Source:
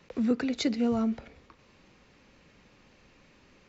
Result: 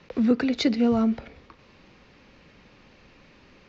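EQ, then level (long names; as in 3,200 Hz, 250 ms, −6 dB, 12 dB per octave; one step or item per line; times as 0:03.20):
low-pass filter 5,600 Hz 24 dB per octave
+5.5 dB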